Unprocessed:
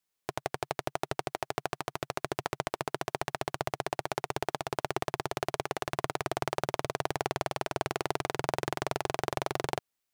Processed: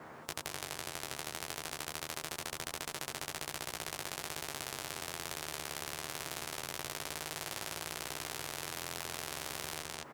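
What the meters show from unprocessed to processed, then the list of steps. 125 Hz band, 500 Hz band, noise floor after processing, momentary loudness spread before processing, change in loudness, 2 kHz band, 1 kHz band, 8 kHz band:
-10.5 dB, -12.5 dB, -51 dBFS, 3 LU, -5.0 dB, -4.0 dB, -10.5 dB, +4.5 dB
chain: low-pass 2.9 kHz 6 dB/octave; peak limiter -20 dBFS, peak gain reduction 8.5 dB; chorus 0.26 Hz, delay 18.5 ms, depth 7.2 ms; band noise 120–1000 Hz -61 dBFS; doubling 13 ms -3 dB; on a send: delay 211 ms -6.5 dB; on the sum: spectrum-flattening compressor 4:1; trim +5 dB

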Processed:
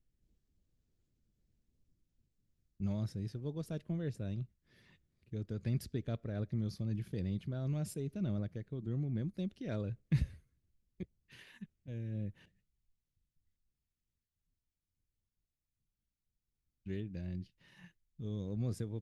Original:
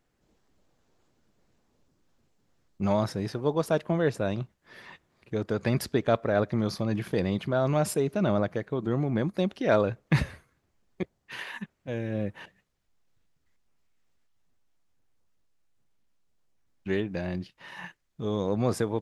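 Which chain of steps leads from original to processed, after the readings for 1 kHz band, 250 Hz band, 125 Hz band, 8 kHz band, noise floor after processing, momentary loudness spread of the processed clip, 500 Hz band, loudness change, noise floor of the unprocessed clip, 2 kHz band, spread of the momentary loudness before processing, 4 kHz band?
-25.0 dB, -10.5 dB, -6.0 dB, -14.0 dB, under -85 dBFS, 12 LU, -19.0 dB, -11.0 dB, -75 dBFS, -20.5 dB, 13 LU, -15.5 dB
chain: amplifier tone stack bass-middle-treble 10-0-1; trim +6.5 dB

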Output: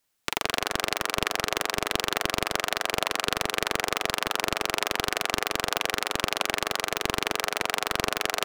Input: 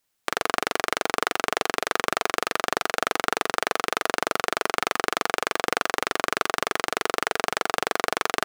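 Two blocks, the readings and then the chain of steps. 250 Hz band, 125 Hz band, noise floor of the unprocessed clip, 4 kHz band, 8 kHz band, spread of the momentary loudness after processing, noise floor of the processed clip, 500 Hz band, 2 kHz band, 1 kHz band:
-1.0 dB, +5.5 dB, -74 dBFS, +2.5 dB, +1.0 dB, 1 LU, -46 dBFS, -3.5 dB, -2.0 dB, -4.0 dB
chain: on a send: band-passed feedback delay 162 ms, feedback 41%, band-pass 540 Hz, level -9.5 dB; on the sum: loudspeaker Doppler distortion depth 0.99 ms

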